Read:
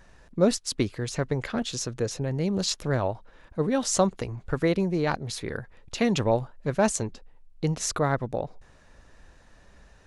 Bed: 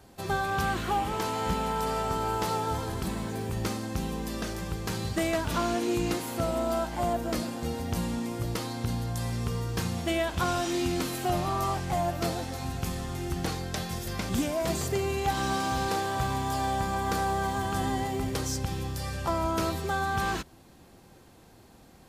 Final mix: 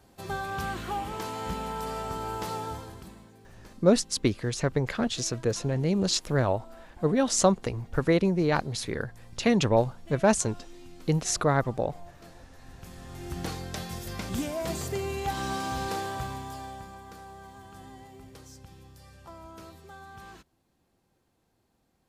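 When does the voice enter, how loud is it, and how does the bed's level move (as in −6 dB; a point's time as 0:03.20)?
3.45 s, +1.0 dB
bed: 0:02.65 −4.5 dB
0:03.38 −21.5 dB
0:12.52 −21.5 dB
0:13.39 −3 dB
0:16.06 −3 dB
0:17.11 −18 dB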